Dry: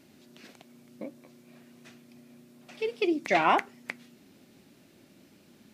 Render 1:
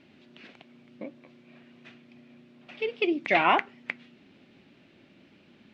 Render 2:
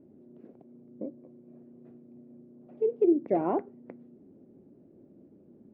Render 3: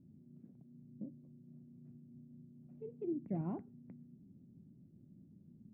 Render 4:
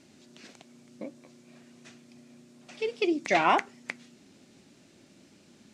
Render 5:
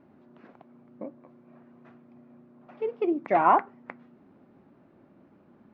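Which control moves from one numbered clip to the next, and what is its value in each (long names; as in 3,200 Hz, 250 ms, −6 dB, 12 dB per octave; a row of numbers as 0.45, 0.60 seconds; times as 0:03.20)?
low-pass with resonance, frequency: 2,900, 440, 160, 7,400, 1,100 Hertz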